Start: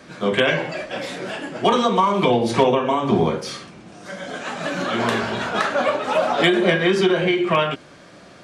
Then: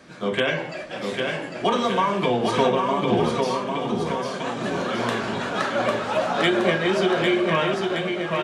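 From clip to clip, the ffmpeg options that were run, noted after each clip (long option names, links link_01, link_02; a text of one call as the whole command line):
ffmpeg -i in.wav -af "aecho=1:1:800|1520|2168|2751|3276:0.631|0.398|0.251|0.158|0.1,volume=-4.5dB" out.wav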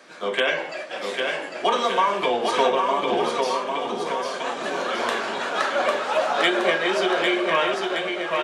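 ffmpeg -i in.wav -af "highpass=440,volume=2dB" out.wav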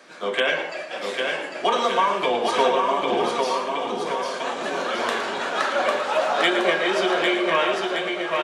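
ffmpeg -i in.wav -af "aecho=1:1:113:0.299" out.wav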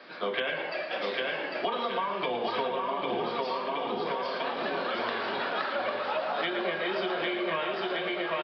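ffmpeg -i in.wav -filter_complex "[0:a]acrossover=split=150[link_01][link_02];[link_02]acompressor=threshold=-28dB:ratio=6[link_03];[link_01][link_03]amix=inputs=2:normalize=0,aresample=11025,aresample=44100" out.wav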